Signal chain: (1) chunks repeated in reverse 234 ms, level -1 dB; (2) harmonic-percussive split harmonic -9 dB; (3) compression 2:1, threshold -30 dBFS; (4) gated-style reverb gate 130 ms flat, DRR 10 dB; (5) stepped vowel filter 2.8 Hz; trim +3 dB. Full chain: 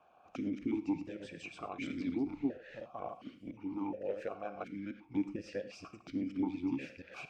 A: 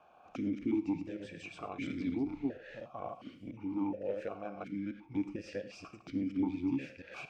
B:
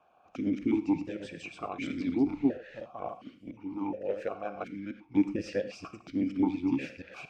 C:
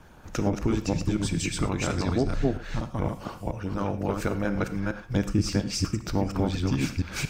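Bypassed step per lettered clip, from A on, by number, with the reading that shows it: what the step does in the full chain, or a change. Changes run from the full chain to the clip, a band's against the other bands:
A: 2, 125 Hz band +3.0 dB; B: 3, mean gain reduction 4.5 dB; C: 5, 125 Hz band +12.0 dB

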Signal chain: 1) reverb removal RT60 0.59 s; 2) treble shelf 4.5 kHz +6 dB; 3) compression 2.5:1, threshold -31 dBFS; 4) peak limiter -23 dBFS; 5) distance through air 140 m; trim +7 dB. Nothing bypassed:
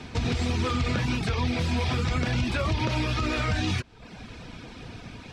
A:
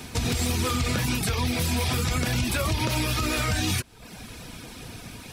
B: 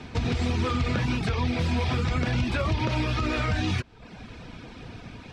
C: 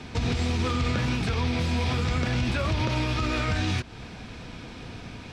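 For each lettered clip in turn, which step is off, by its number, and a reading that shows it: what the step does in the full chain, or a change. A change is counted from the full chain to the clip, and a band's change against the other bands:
5, 8 kHz band +11.5 dB; 2, 8 kHz band -4.0 dB; 1, momentary loudness spread change -1 LU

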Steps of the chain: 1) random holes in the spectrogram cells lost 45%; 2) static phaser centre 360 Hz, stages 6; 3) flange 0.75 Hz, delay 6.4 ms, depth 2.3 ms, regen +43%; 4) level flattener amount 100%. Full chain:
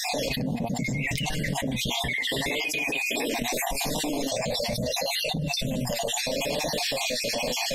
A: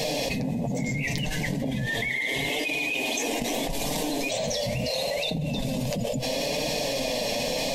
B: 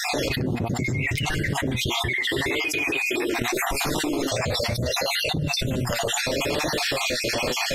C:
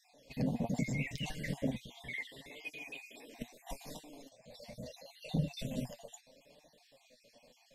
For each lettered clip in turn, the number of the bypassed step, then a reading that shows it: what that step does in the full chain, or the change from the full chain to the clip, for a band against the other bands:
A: 1, 1 kHz band -2.5 dB; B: 2, 8 kHz band -2.0 dB; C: 4, momentary loudness spread change +14 LU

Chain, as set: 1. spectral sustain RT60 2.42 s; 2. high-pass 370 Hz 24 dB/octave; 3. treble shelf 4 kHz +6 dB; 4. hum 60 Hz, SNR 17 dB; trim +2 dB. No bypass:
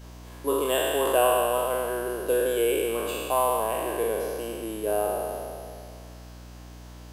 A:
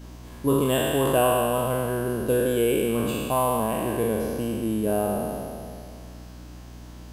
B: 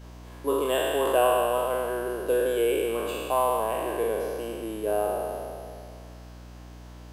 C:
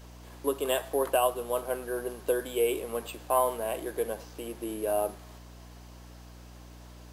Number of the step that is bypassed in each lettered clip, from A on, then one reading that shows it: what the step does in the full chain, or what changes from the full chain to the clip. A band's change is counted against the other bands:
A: 2, 125 Hz band +12.0 dB; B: 3, 8 kHz band -5.0 dB; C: 1, 2 kHz band -1.5 dB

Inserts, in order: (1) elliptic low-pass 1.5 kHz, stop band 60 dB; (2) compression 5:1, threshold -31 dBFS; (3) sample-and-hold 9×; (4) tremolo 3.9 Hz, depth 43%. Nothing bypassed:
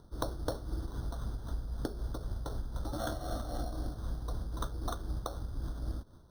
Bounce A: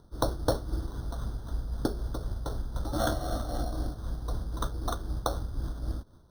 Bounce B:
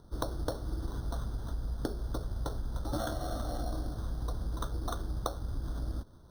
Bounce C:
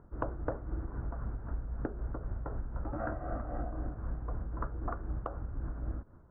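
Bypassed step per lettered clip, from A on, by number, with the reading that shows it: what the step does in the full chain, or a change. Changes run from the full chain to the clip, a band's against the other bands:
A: 2, mean gain reduction 4.0 dB; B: 4, loudness change +2.0 LU; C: 3, distortion -14 dB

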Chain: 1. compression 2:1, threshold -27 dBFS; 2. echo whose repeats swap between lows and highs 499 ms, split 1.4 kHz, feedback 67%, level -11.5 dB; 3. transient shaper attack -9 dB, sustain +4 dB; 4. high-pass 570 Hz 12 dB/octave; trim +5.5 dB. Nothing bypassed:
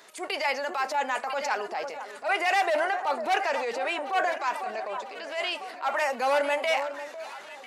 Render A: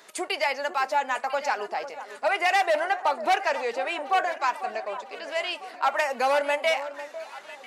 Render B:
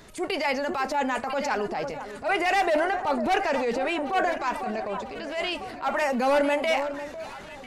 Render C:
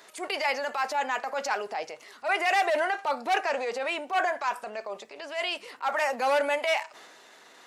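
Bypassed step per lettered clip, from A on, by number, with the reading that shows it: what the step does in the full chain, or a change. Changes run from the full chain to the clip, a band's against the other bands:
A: 3, momentary loudness spread change +1 LU; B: 4, crest factor change -1.5 dB; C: 2, momentary loudness spread change +1 LU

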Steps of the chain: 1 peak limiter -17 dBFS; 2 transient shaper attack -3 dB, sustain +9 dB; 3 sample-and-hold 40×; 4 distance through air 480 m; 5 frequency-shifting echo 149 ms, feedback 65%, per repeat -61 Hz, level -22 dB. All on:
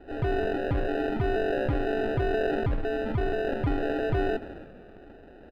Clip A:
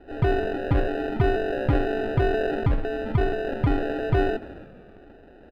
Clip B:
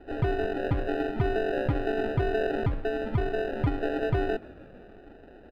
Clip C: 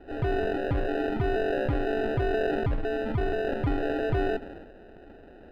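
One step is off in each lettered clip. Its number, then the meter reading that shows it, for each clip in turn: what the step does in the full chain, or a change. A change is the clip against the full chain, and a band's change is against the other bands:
1, crest factor change +2.5 dB; 2, 125 Hz band +2.0 dB; 5, echo-to-direct -19.5 dB to none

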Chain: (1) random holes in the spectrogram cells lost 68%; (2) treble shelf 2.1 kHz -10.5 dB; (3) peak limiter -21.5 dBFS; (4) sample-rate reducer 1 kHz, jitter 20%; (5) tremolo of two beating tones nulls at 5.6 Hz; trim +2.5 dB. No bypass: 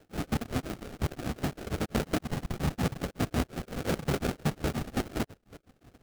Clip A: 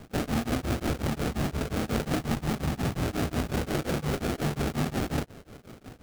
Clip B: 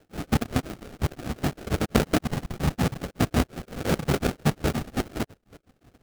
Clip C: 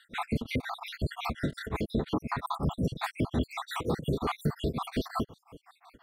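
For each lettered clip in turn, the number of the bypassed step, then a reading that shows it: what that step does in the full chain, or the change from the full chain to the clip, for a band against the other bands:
1, crest factor change -3.0 dB; 3, mean gain reduction 2.0 dB; 4, 8 kHz band -8.0 dB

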